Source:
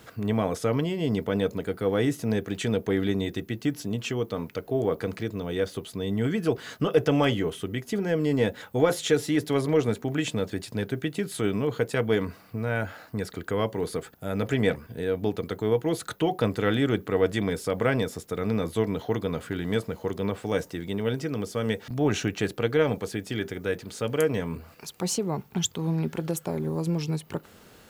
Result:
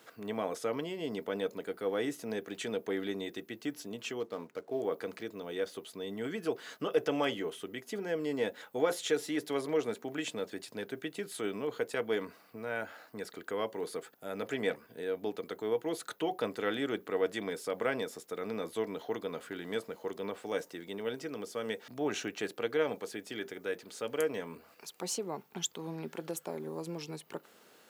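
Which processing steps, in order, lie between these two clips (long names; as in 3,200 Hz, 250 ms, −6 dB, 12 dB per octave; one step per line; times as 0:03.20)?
0:04.20–0:04.81: running median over 15 samples
high-pass filter 310 Hz 12 dB per octave
level −6.5 dB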